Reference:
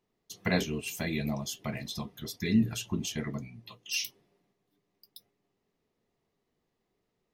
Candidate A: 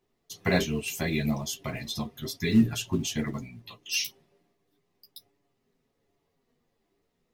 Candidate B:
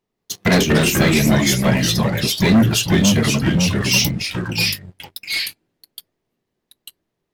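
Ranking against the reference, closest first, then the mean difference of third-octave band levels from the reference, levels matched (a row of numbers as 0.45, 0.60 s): A, B; 2.0, 9.5 dB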